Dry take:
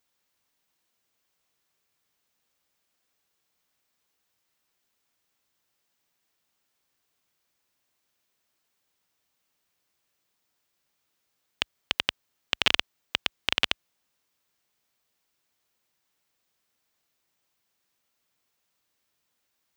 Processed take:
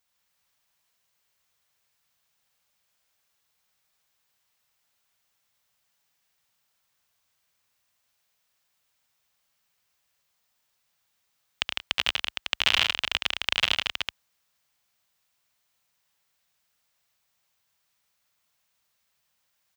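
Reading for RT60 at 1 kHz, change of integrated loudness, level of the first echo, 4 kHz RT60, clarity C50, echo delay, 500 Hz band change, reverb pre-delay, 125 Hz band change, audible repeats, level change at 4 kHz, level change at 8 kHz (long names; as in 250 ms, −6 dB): no reverb audible, +2.0 dB, −7.0 dB, no reverb audible, no reverb audible, 72 ms, −1.0 dB, no reverb audible, +2.0 dB, 4, +3.0 dB, +3.0 dB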